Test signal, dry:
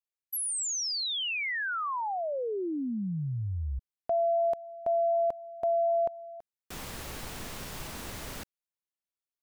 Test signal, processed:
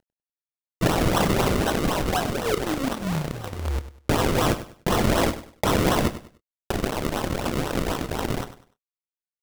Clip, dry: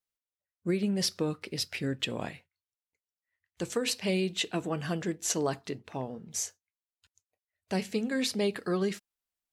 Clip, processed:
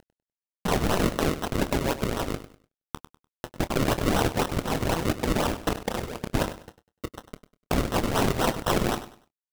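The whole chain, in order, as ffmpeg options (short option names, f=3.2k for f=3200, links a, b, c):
-filter_complex "[0:a]highshelf=f=3.5k:g=8.5,aresample=11025,aeval=exprs='(mod(21.1*val(0)+1,2)-1)/21.1':c=same,aresample=44100,acontrast=44,alimiter=limit=-23.5dB:level=0:latency=1:release=32,acompressor=mode=upward:threshold=-35dB:ratio=4:attack=27:release=39:knee=2.83:detection=peak,acrusher=bits=4:mix=0:aa=0.000001,lowshelf=f=470:g=-3,crystalizer=i=3.5:c=0,aphaser=in_gain=1:out_gain=1:delay=4.1:decay=0.66:speed=1.6:type=sinusoidal,acrusher=samples=37:mix=1:aa=0.000001:lfo=1:lforange=37:lforate=4,asplit=2[a][b];[b]adelay=26,volume=-13.5dB[c];[a][c]amix=inputs=2:normalize=0,aecho=1:1:99|198|297:0.211|0.0592|0.0166,volume=-6dB"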